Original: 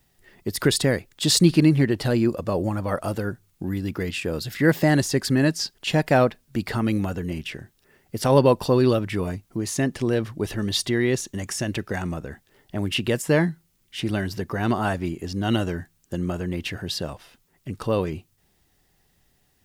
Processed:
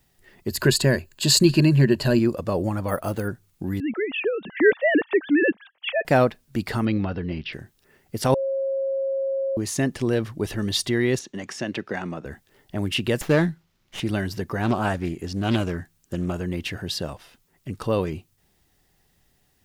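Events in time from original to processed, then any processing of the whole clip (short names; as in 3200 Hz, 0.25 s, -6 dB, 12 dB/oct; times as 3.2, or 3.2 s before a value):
0.49–2.19 ripple EQ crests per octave 1.4, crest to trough 10 dB
2.88–3.28 careless resampling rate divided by 4×, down filtered, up hold
3.8–6.05 sine-wave speech
6.85–7.53 steep low-pass 5200 Hz 72 dB/oct
8.34–9.57 bleep 541 Hz -22 dBFS
11.19–12.25 three-band isolator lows -22 dB, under 150 Hz, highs -18 dB, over 5500 Hz
13.21–14 running maximum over 5 samples
14.61–16.34 Doppler distortion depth 0.31 ms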